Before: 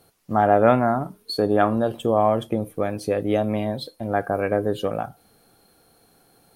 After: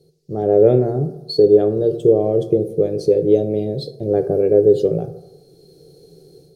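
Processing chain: EQ curve 100 Hz 0 dB, 160 Hz +10 dB, 230 Hz -10 dB, 390 Hz +14 dB, 1000 Hz -25 dB, 1400 Hz -23 dB, 3000 Hz -13 dB, 4400 Hz +2 dB, 6700 Hz -2 dB, 11000 Hz -11 dB; AGC gain up to 10 dB; on a send: reverb RT60 1.0 s, pre-delay 3 ms, DRR 8 dB; on the sum: gain -2 dB

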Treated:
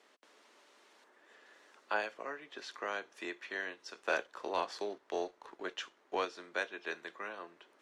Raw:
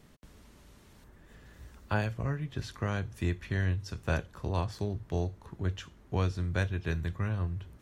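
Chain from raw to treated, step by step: Bessel high-pass 540 Hz, order 6; 4–6.25 sample leveller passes 1; air absorption 70 m; gain +1 dB

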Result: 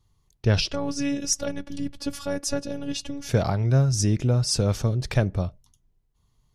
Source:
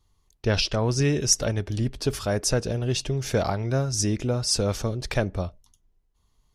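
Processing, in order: 0.72–3.29 robotiser 283 Hz; bell 130 Hz +8.5 dB 1.2 oct; gain -1.5 dB

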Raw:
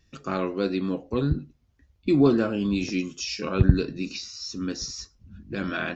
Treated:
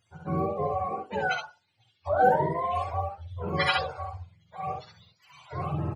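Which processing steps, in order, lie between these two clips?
spectrum mirrored in octaves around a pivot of 460 Hz; early reflections 41 ms -12 dB, 65 ms -3.5 dB; 1.4–2.17 treble ducked by the level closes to 1800 Hz, closed at -21.5 dBFS; gain -2.5 dB

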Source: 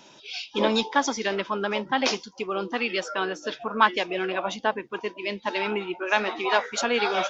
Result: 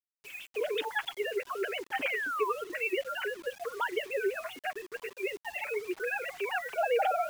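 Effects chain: sine-wave speech; band shelf 880 Hz -8 dB 1.3 oct, from 6.72 s +9.5 dB; limiter -18 dBFS, peak gain reduction 10.5 dB; flange 0.31 Hz, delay 5.3 ms, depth 3.1 ms, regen +8%; 2.02–2.5 painted sound fall 940–2600 Hz -32 dBFS; bit-crush 8-bit; gain -1.5 dB

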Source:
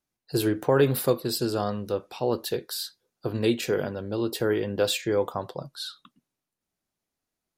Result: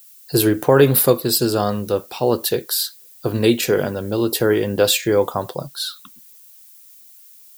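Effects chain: high shelf 10000 Hz +11.5 dB; added noise violet -54 dBFS; gain +8 dB

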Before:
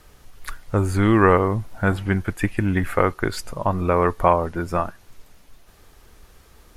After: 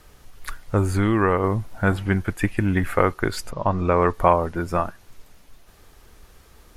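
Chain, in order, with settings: 0.95–1.44 compressor 2.5:1, threshold -17 dBFS, peak gain reduction 5 dB; 3.5–4.12 LPF 5200 Hz -> 9600 Hz 24 dB/oct

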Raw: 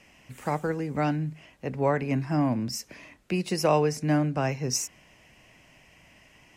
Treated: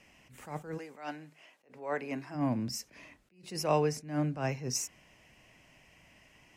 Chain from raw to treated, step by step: 0.77–2.34 HPF 620 Hz -> 290 Hz 12 dB/oct; attack slew limiter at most 140 dB/s; gain -4.5 dB

